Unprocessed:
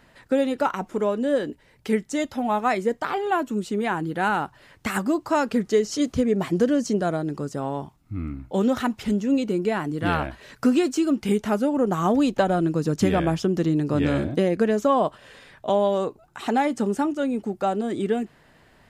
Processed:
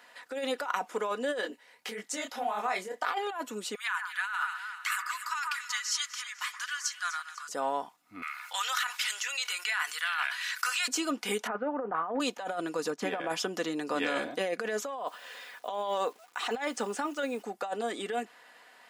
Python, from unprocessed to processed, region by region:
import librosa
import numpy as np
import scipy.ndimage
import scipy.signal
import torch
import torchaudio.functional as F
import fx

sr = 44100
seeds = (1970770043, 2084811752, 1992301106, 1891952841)

y = fx.chain(x, sr, fx.over_compress(threshold_db=-26.0, ratio=-1.0),
    fx.detune_double(cents=59), at=(1.41, 3.06))
y = fx.chain(y, sr, fx.steep_highpass(hz=1100.0, slope=48),
    fx.echo_alternate(ms=125, hz=1800.0, feedback_pct=67, wet_db=-10), at=(3.75, 7.49))
y = fx.chain(y, sr, fx.highpass(hz=1300.0, slope=24),
    fx.env_flatten(amount_pct=50), at=(8.22, 10.88))
y = fx.chain(y, sr, fx.lowpass(hz=1900.0, slope=24),
    fx.band_widen(depth_pct=40), at=(11.47, 12.2))
y = fx.chain(y, sr, fx.high_shelf(hz=2900.0, db=-11.5),
    fx.transient(attack_db=-1, sustain_db=-6), at=(12.9, 13.3))
y = fx.chain(y, sr, fx.lowpass(hz=8600.0, slope=12),
    fx.quant_dither(seeds[0], bits=10, dither='none'), at=(14.96, 17.43))
y = scipy.signal.sosfilt(scipy.signal.butter(2, 710.0, 'highpass', fs=sr, output='sos'), y)
y = y + 0.42 * np.pad(y, (int(4.1 * sr / 1000.0), 0))[:len(y)]
y = fx.over_compress(y, sr, threshold_db=-31.0, ratio=-1.0)